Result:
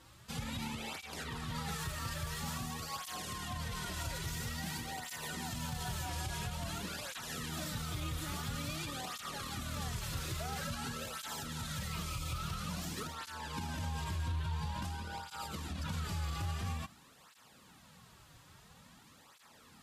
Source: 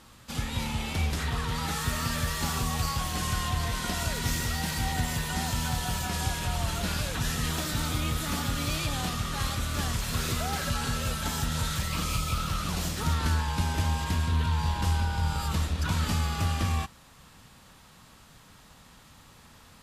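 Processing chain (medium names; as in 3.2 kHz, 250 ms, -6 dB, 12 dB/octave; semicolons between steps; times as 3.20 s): peak limiter -25 dBFS, peak gain reduction 10 dB; cancelling through-zero flanger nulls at 0.49 Hz, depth 4.9 ms; trim -2.5 dB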